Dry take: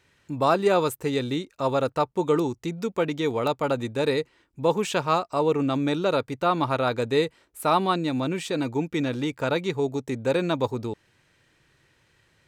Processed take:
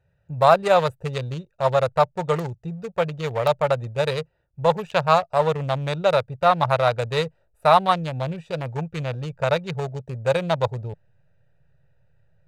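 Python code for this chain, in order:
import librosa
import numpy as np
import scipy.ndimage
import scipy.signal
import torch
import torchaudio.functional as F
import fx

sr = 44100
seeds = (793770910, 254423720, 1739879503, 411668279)

p1 = fx.wiener(x, sr, points=41)
p2 = fx.curve_eq(p1, sr, hz=(160.0, 280.0, 590.0, 1300.0), db=(0, -24, 3, 0))
p3 = fx.backlash(p2, sr, play_db=-37.5)
p4 = p2 + F.gain(torch.from_numpy(p3), -10.0).numpy()
y = F.gain(torch.from_numpy(p4), 3.5).numpy()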